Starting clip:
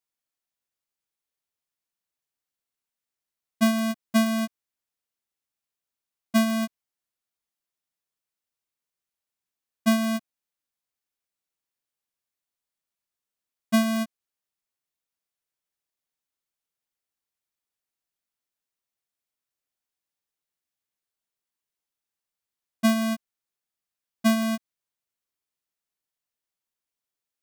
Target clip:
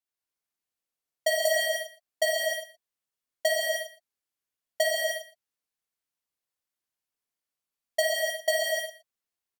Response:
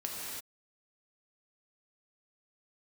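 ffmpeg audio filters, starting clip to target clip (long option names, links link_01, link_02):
-filter_complex "[0:a]asetrate=126126,aresample=44100,aecho=1:1:117:0.133[link_01];[1:a]atrim=start_sample=2205,asetrate=48510,aresample=44100[link_02];[link_01][link_02]afir=irnorm=-1:irlink=0,volume=1.5dB"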